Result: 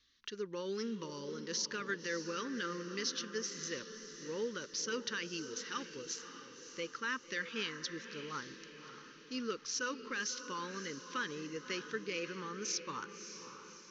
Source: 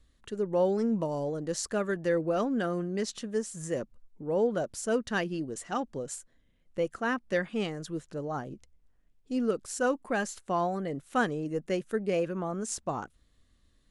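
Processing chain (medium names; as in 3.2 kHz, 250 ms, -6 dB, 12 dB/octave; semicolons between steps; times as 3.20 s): steep low-pass 6.2 kHz 96 dB/octave; tilt EQ +4.5 dB/octave; peak limiter -23.5 dBFS, peak gain reduction 10.5 dB; Butterworth band-stop 700 Hz, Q 1.2; echo that smears into a reverb 591 ms, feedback 51%, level -10 dB; trim -2.5 dB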